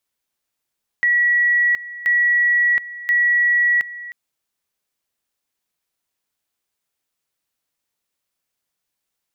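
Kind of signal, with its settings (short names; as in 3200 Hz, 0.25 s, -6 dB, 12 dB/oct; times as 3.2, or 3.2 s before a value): two-level tone 1930 Hz -13 dBFS, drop 17 dB, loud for 0.72 s, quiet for 0.31 s, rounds 3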